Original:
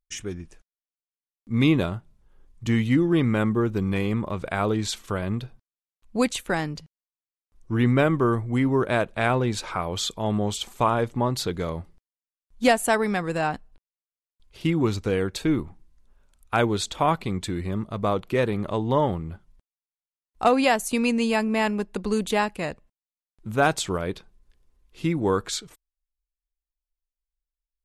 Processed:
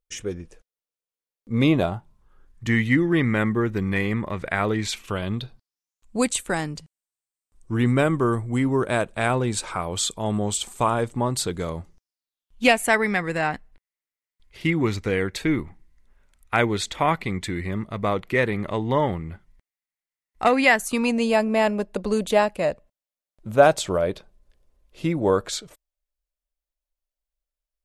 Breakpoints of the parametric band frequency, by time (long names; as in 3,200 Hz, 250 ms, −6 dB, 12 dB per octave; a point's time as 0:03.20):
parametric band +12 dB 0.42 octaves
0:01.53 490 Hz
0:02.69 1,900 Hz
0:04.75 1,900 Hz
0:06.17 8,300 Hz
0:11.68 8,300 Hz
0:12.89 2,000 Hz
0:20.72 2,000 Hz
0:21.22 590 Hz